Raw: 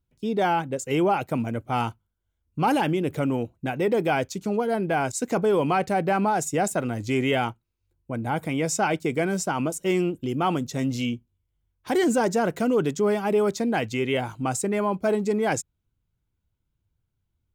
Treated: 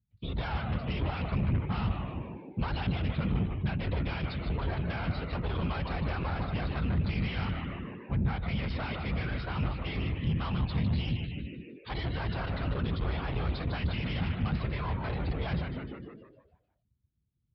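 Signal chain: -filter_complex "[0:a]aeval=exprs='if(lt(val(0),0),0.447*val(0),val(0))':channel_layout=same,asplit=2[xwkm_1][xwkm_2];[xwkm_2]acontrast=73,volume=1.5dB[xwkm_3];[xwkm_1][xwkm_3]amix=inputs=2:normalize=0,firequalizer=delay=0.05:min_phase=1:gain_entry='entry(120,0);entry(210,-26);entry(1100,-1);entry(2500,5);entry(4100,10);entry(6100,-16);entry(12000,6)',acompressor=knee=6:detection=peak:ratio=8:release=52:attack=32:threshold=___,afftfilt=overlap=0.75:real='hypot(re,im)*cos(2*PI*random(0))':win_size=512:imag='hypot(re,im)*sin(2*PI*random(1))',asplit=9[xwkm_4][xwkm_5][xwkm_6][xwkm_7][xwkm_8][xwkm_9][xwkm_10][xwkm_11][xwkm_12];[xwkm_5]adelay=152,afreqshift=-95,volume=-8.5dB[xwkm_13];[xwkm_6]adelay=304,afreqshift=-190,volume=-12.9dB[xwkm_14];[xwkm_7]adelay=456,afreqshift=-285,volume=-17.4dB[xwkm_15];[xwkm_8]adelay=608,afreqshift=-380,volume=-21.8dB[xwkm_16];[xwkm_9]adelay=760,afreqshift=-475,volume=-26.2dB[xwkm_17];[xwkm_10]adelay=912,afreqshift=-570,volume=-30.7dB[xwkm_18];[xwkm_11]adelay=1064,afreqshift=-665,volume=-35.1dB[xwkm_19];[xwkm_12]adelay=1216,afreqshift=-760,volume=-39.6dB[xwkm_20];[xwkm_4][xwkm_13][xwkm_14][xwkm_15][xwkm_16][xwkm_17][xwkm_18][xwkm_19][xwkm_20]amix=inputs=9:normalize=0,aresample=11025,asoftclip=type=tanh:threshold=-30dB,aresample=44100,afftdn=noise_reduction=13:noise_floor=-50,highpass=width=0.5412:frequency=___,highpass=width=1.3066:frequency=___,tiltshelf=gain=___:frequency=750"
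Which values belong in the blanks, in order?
-22dB, 45, 45, 9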